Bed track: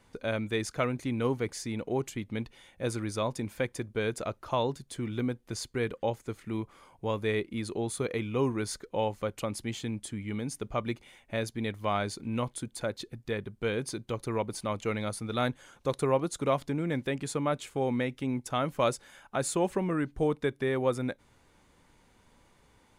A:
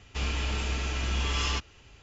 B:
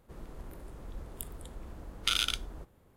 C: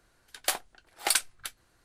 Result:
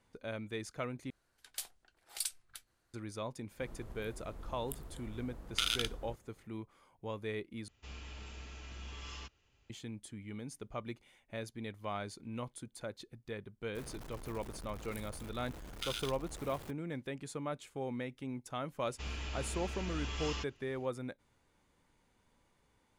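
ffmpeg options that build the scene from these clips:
ffmpeg -i bed.wav -i cue0.wav -i cue1.wav -i cue2.wav -filter_complex "[2:a]asplit=2[link_01][link_02];[1:a]asplit=2[link_03][link_04];[0:a]volume=-10dB[link_05];[3:a]acrossover=split=120|3000[link_06][link_07][link_08];[link_07]acompressor=threshold=-44dB:ratio=6:attack=3.2:release=140:knee=2.83:detection=peak[link_09];[link_06][link_09][link_08]amix=inputs=3:normalize=0[link_10];[link_02]aeval=exprs='val(0)+0.5*0.0282*sgn(val(0))':channel_layout=same[link_11];[link_05]asplit=3[link_12][link_13][link_14];[link_12]atrim=end=1.104[link_15];[link_10]atrim=end=1.84,asetpts=PTS-STARTPTS,volume=-11dB[link_16];[link_13]atrim=start=2.936:end=7.684[link_17];[link_03]atrim=end=2.02,asetpts=PTS-STARTPTS,volume=-18dB[link_18];[link_14]atrim=start=9.696[link_19];[link_01]atrim=end=2.96,asetpts=PTS-STARTPTS,volume=-4dB,afade=type=in:duration=0.004:curve=hsin,afade=type=out:start_time=2.956:duration=0.004:curve=hsin,adelay=3510[link_20];[link_11]atrim=end=2.96,asetpts=PTS-STARTPTS,volume=-13.5dB,afade=type=in:duration=0.004:curve=hsin,afade=type=out:start_time=2.956:duration=0.004:curve=hsin,adelay=13750[link_21];[link_04]atrim=end=2.02,asetpts=PTS-STARTPTS,volume=-11dB,afade=type=in:duration=0.004:curve=hsin,afade=type=out:start_time=2.016:duration=0.004:curve=hsin,adelay=18840[link_22];[link_15][link_16]acrossfade=duration=0.004:curve1=hsin:curve2=hsin[link_23];[link_23][link_17]acrossfade=duration=0.004:curve1=hsin:curve2=hsin[link_24];[link_24][link_18]acrossfade=duration=0.004:curve1=hsin:curve2=hsin[link_25];[link_25][link_19]acrossfade=duration=0.004:curve1=hsin:curve2=hsin[link_26];[link_26][link_20][link_21][link_22]amix=inputs=4:normalize=0" out.wav

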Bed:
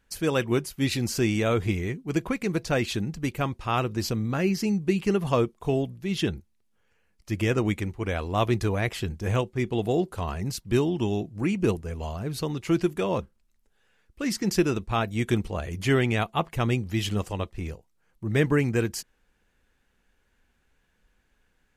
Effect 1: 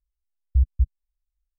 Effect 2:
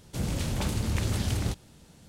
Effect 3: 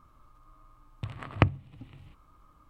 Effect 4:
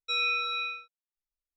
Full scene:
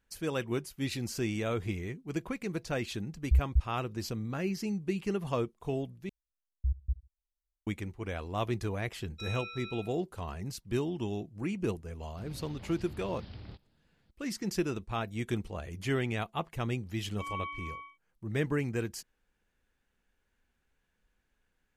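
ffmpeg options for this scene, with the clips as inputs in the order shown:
ffmpeg -i bed.wav -i cue0.wav -i cue1.wav -i cue2.wav -i cue3.wav -filter_complex "[1:a]asplit=2[link_01][link_02];[4:a]asplit=2[link_03][link_04];[0:a]volume=-8.5dB[link_05];[link_02]aecho=1:1:72|144:0.0891|0.0267[link_06];[2:a]aresample=11025,aresample=44100[link_07];[link_04]lowpass=frequency=3100:width_type=q:width=0.5098,lowpass=frequency=3100:width_type=q:width=0.6013,lowpass=frequency=3100:width_type=q:width=0.9,lowpass=frequency=3100:width_type=q:width=2.563,afreqshift=-3600[link_08];[link_05]asplit=2[link_09][link_10];[link_09]atrim=end=6.094[link_11];[link_06]atrim=end=1.58,asetpts=PTS-STARTPTS,volume=-11.5dB[link_12];[link_10]atrim=start=7.666[link_13];[link_01]atrim=end=1.58,asetpts=PTS-STARTPTS,volume=-5.5dB,afade=type=in:duration=0.004:curve=hsin,afade=type=out:start_time=1.576:duration=0.004:curve=hsin,adelay=2760[link_14];[link_03]atrim=end=1.56,asetpts=PTS-STARTPTS,volume=-14dB,afade=type=in:duration=0.004:curve=hsin,afade=type=out:start_time=1.556:duration=0.004:curve=hsin,adelay=9100[link_15];[link_07]atrim=end=2.08,asetpts=PTS-STARTPTS,volume=-17.5dB,afade=type=in:duration=0.004:curve=hsin,afade=type=out:start_time=2.076:duration=0.004:curve=hsin,adelay=12030[link_16];[link_08]atrim=end=1.56,asetpts=PTS-STARTPTS,volume=-9dB,afade=type=in:duration=0.004:curve=hsin,afade=type=out:start_time=1.556:duration=0.004:curve=hsin,adelay=17100[link_17];[link_11][link_12]acrossfade=duration=0.004:curve1=hsin:curve2=hsin[link_18];[link_18][link_13]acrossfade=duration=0.004:curve1=hsin:curve2=hsin[link_19];[link_19][link_14][link_15][link_16][link_17]amix=inputs=5:normalize=0" out.wav

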